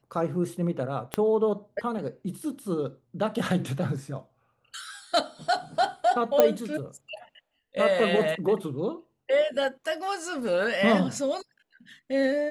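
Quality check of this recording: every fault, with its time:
1.14 s: pop -12 dBFS
6.40 s: pop -6 dBFS

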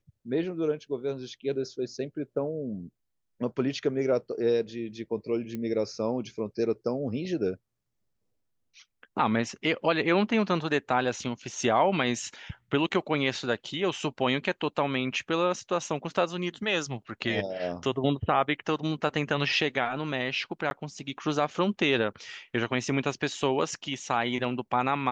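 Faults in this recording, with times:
5.55 s: pop -22 dBFS
20.70–20.71 s: dropout 11 ms

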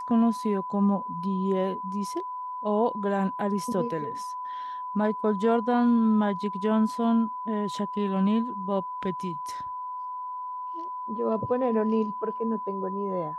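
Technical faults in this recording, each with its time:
whine 1 kHz -32 dBFS

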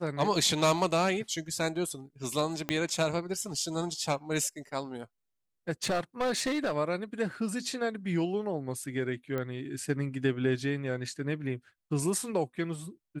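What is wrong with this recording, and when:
2.69 s: pop -14 dBFS
5.83–6.76 s: clipped -25 dBFS
9.38 s: pop -21 dBFS

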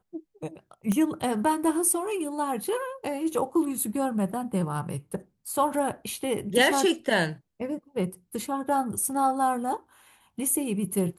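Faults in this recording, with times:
0.92 s: pop -16 dBFS

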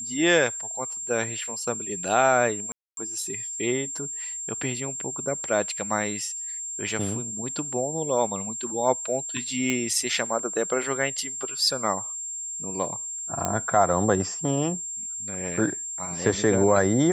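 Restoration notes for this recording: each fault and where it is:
whine 7.4 kHz -31 dBFS
2.72–2.97 s: dropout 252 ms
9.70 s: pop -11 dBFS
13.45 s: pop -10 dBFS

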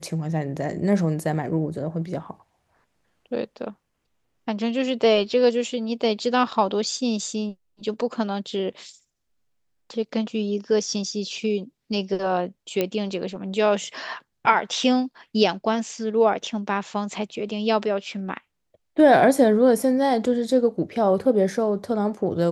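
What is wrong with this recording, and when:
12.81 s: pop -9 dBFS

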